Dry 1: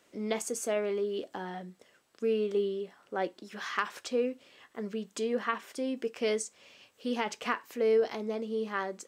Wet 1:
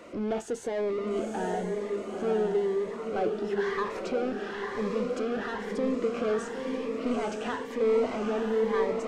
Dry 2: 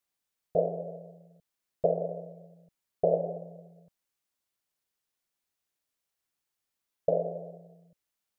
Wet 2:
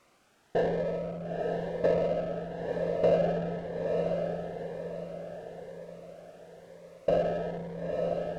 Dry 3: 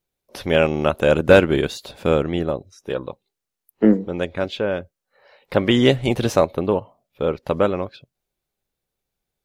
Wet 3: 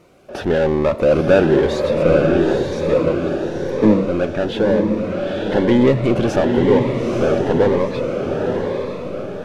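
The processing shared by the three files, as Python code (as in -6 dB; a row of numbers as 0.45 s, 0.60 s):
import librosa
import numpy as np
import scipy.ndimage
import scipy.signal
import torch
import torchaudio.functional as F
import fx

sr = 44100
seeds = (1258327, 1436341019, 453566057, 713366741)

p1 = fx.highpass(x, sr, hz=370.0, slope=6)
p2 = fx.peak_eq(p1, sr, hz=4000.0, db=-9.5, octaves=1.9)
p3 = fx.power_curve(p2, sr, exponent=0.5)
p4 = fx.spacing_loss(p3, sr, db_at_10k=23)
p5 = p4 + fx.echo_diffused(p4, sr, ms=902, feedback_pct=45, wet_db=-3.0, dry=0)
p6 = fx.notch_cascade(p5, sr, direction='rising', hz=1.0)
y = p6 * 10.0 ** (1.0 / 20.0)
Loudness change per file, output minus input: +3.0 LU, +0.5 LU, +3.0 LU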